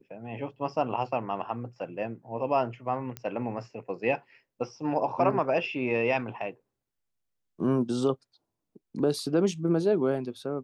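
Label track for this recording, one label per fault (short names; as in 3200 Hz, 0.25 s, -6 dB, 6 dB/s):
3.170000	3.170000	pop -19 dBFS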